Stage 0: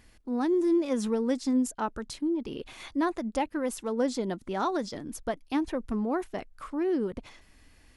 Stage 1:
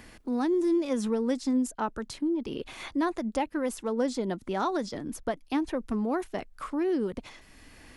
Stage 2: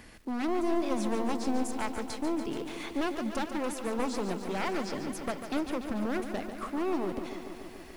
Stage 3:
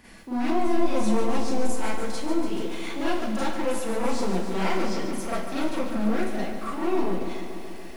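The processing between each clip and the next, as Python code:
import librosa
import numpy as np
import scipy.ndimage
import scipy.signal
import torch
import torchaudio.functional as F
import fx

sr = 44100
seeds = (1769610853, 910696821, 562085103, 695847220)

y1 = fx.band_squash(x, sr, depth_pct=40)
y2 = np.minimum(y1, 2.0 * 10.0 ** (-27.5 / 20.0) - y1)
y2 = fx.echo_crushed(y2, sr, ms=144, feedback_pct=80, bits=9, wet_db=-9.0)
y2 = y2 * librosa.db_to_amplitude(-1.5)
y3 = fx.rev_schroeder(y2, sr, rt60_s=0.38, comb_ms=33, drr_db=-8.5)
y3 = y3 * librosa.db_to_amplitude(-4.0)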